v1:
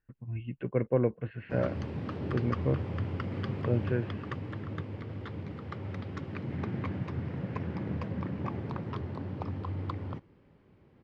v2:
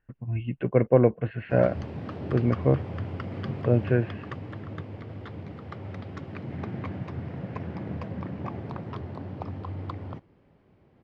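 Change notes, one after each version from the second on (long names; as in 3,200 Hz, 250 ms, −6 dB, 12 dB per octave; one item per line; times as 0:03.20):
speech +7.0 dB
master: add parametric band 690 Hz +6 dB 0.42 octaves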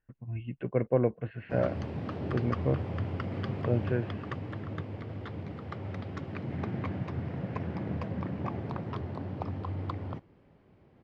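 speech −7.0 dB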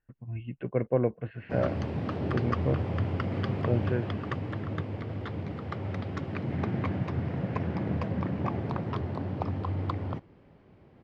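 background +4.0 dB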